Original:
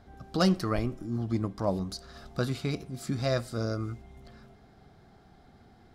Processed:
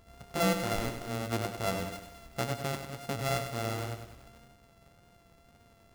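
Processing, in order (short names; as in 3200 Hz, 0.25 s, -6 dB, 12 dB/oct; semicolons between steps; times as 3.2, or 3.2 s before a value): sample sorter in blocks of 64 samples; wow and flutter 26 cents; lo-fi delay 99 ms, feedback 55%, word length 8-bit, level -8 dB; gain -4 dB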